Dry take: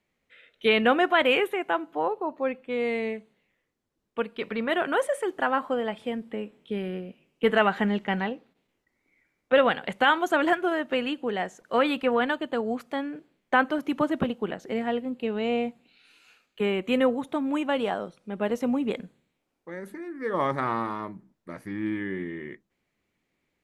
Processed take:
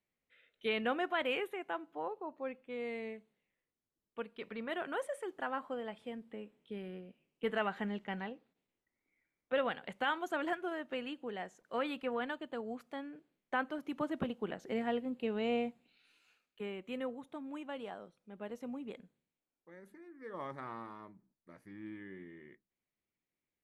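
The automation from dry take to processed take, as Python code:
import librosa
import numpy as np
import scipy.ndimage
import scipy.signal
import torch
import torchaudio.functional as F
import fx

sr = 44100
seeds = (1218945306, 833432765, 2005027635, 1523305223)

y = fx.gain(x, sr, db=fx.line((13.81, -13.0), (14.72, -7.0), (15.56, -7.0), (16.78, -17.0)))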